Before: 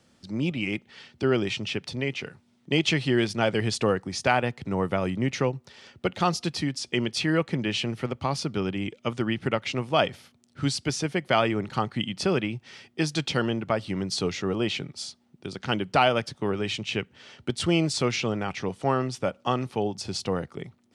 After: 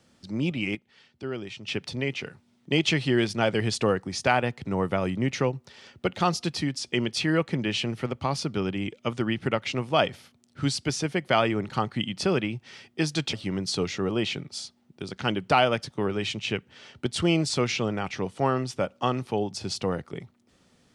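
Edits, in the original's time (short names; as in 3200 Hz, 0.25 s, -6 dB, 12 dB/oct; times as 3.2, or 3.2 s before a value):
0.75–1.68 gain -10 dB
13.33–13.77 cut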